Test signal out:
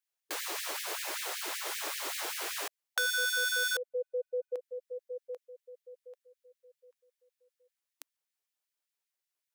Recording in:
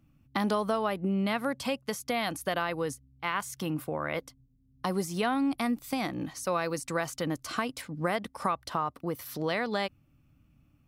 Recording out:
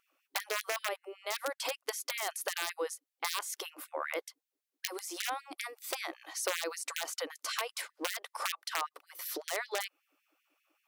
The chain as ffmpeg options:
ffmpeg -i in.wav -af "aeval=exprs='(mod(10*val(0)+1,2)-1)/10':channel_layout=same,acompressor=threshold=-33dB:ratio=6,afftfilt=real='re*gte(b*sr/1024,290*pow(1700/290,0.5+0.5*sin(2*PI*5.2*pts/sr)))':imag='im*gte(b*sr/1024,290*pow(1700/290,0.5+0.5*sin(2*PI*5.2*pts/sr)))':win_size=1024:overlap=0.75,volume=3.5dB" out.wav

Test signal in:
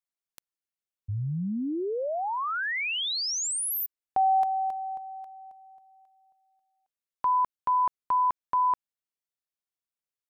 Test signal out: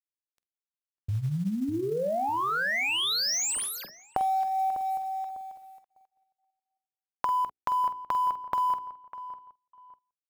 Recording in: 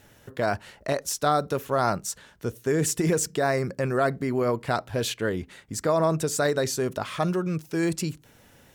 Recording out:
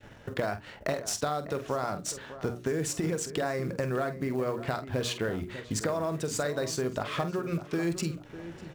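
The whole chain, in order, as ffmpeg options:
ffmpeg -i in.wav -filter_complex "[0:a]adynamicsmooth=sensitivity=7:basefreq=3900,bandreject=frequency=60:width_type=h:width=6,bandreject=frequency=120:width_type=h:width=6,bandreject=frequency=180:width_type=h:width=6,bandreject=frequency=240:width_type=h:width=6,bandreject=frequency=300:width_type=h:width=6,bandreject=frequency=360:width_type=h:width=6,bandreject=frequency=420:width_type=h:width=6,adynamicequalizer=threshold=0.00794:dfrequency=930:dqfactor=6.3:tfrequency=930:tqfactor=6.3:attack=5:release=100:ratio=0.438:range=3.5:mode=cutabove:tftype=bell,acompressor=threshold=-33dB:ratio=16:attack=8.4:release=476:knee=6:detection=peak,asplit=2[link_01][link_02];[link_02]adelay=47,volume=-11dB[link_03];[link_01][link_03]amix=inputs=2:normalize=0,acrusher=bits=7:mode=log:mix=0:aa=0.000001,asplit=2[link_04][link_05];[link_05]adelay=600,lowpass=frequency=1900:poles=1,volume=-13dB,asplit=2[link_06][link_07];[link_07]adelay=600,lowpass=frequency=1900:poles=1,volume=0.32,asplit=2[link_08][link_09];[link_09]adelay=600,lowpass=frequency=1900:poles=1,volume=0.32[link_10];[link_04][link_06][link_08][link_10]amix=inputs=4:normalize=0,agate=range=-33dB:threshold=-59dB:ratio=3:release=21:detection=peak,volume=7dB" out.wav

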